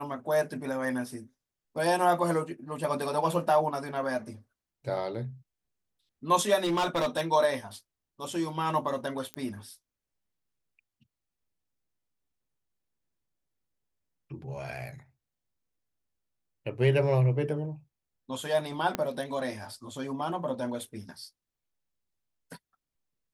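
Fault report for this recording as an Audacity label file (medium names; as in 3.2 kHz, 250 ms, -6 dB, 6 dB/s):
6.630000	7.210000	clipped -23.5 dBFS
9.340000	9.340000	pop -21 dBFS
18.950000	18.950000	pop -13 dBFS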